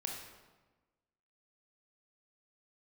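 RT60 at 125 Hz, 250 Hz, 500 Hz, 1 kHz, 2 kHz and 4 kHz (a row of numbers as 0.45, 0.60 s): 1.4, 1.4, 1.3, 1.2, 1.0, 0.85 s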